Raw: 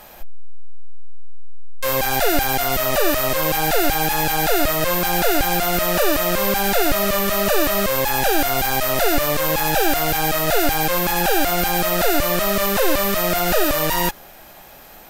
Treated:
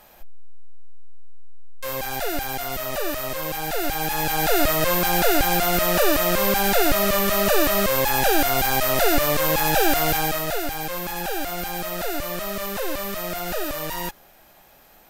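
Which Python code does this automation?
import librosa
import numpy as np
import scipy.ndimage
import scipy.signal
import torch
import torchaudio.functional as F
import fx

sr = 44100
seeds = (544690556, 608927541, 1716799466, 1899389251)

y = fx.gain(x, sr, db=fx.line((3.66, -8.5), (4.62, -1.0), (10.11, -1.0), (10.64, -9.5)))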